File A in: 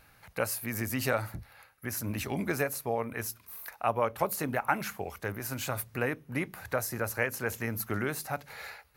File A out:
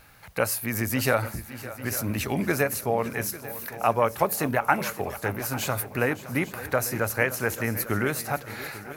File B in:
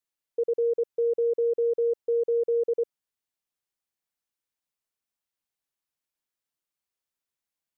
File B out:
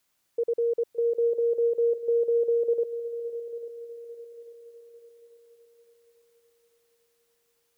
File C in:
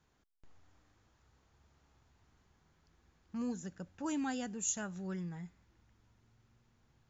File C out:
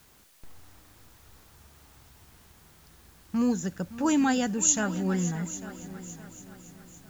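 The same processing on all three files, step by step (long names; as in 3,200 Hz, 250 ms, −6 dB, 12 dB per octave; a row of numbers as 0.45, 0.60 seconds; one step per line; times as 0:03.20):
background noise white −73 dBFS
on a send: echo machine with several playback heads 282 ms, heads second and third, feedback 44%, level −16 dB
on the sum: loudness normalisation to −27 LKFS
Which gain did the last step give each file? +6.0, −1.0, +12.5 decibels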